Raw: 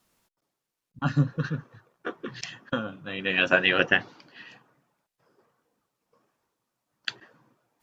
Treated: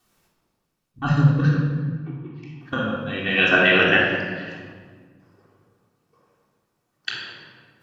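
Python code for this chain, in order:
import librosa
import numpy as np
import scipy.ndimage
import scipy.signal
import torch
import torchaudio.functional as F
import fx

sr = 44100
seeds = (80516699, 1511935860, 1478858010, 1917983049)

y = fx.vowel_filter(x, sr, vowel='u', at=(1.58, 2.61))
y = fx.room_shoebox(y, sr, seeds[0], volume_m3=1800.0, walls='mixed', distance_m=3.5)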